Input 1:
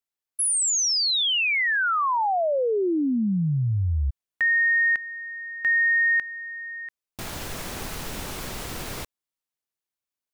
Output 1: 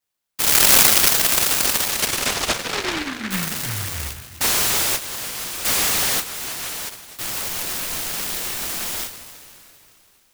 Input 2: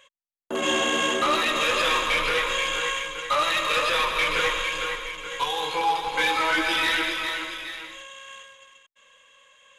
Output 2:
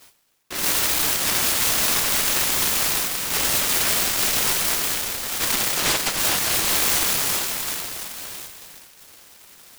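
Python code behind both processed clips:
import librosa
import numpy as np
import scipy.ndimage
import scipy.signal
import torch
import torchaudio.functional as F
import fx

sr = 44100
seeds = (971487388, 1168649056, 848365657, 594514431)

p1 = fx.rattle_buzz(x, sr, strikes_db=-27.0, level_db=-19.0)
p2 = fx.low_shelf(p1, sr, hz=460.0, db=-11.5)
p3 = np.clip(10.0 ** (27.0 / 20.0) * p2, -1.0, 1.0) / 10.0 ** (27.0 / 20.0)
p4 = fx.peak_eq(p3, sr, hz=6900.0, db=12.0, octaves=1.4)
p5 = p4 + fx.echo_single(p4, sr, ms=263, db=-23.0, dry=0)
p6 = fx.rev_double_slope(p5, sr, seeds[0], early_s=0.21, late_s=3.1, knee_db=-20, drr_db=-5.5)
p7 = fx.noise_mod_delay(p6, sr, seeds[1], noise_hz=1700.0, depth_ms=0.5)
y = p7 * 10.0 ** (-1.5 / 20.0)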